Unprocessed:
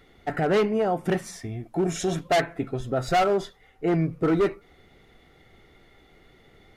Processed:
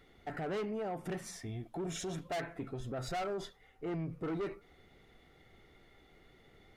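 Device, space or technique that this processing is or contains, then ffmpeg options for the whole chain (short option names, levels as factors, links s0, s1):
soft clipper into limiter: -filter_complex "[0:a]asettb=1/sr,asplit=3[s0][s1][s2];[s0]atrim=end=1.464[s3];[s1]atrim=start=1.46:end=1.98,asetpts=PTS-STARTPTS,afade=t=in:d=0.004:c=qsin,afade=t=out:st=0.516:d=0.004:c=qsin,equalizer=f=3400:t=o:w=0.36:g=8.5[s4];[s2]atrim=start=1.976[s5];[s3][s4]acrossfade=d=0.004:c1=hsin:c2=qsin[s6];[s6][s5]acrossfade=d=0.004:c1=qsin:c2=hsin,asoftclip=type=tanh:threshold=0.1,alimiter=level_in=1.33:limit=0.0631:level=0:latency=1:release=62,volume=0.75,volume=0.473"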